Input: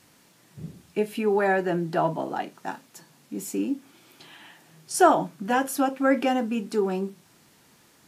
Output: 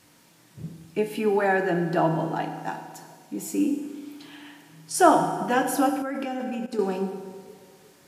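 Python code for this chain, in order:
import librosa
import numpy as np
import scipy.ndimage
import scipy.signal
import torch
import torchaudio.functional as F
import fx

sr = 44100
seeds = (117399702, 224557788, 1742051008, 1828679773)

y = fx.echo_banded(x, sr, ms=358, feedback_pct=49, hz=550.0, wet_db=-19.0)
y = fx.rev_fdn(y, sr, rt60_s=1.5, lf_ratio=1.1, hf_ratio=0.9, size_ms=19.0, drr_db=5.5)
y = fx.level_steps(y, sr, step_db=15, at=(6.02, 6.79))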